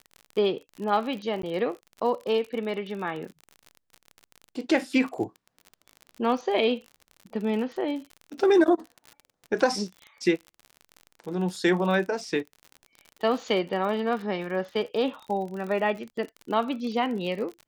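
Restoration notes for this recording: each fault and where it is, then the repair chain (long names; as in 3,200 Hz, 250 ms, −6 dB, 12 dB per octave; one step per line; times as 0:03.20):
surface crackle 47 per second −34 dBFS
0:01.42–0:01.43: drop-out 13 ms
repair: click removal
repair the gap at 0:01.42, 13 ms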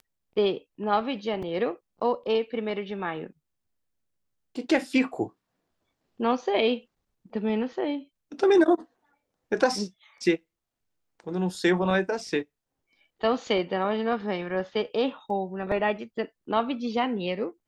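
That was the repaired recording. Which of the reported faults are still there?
none of them is left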